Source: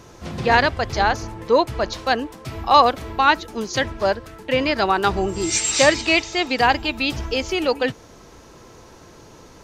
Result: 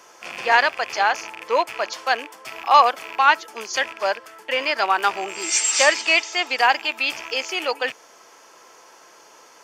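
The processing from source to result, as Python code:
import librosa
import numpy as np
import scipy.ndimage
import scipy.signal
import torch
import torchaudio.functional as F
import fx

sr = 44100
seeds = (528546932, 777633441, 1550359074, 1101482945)

y = fx.rattle_buzz(x, sr, strikes_db=-32.0, level_db=-22.0)
y = scipy.signal.sosfilt(scipy.signal.butter(2, 720.0, 'highpass', fs=sr, output='sos'), y)
y = fx.notch(y, sr, hz=3900.0, q=5.7)
y = y * librosa.db_to_amplitude(1.5)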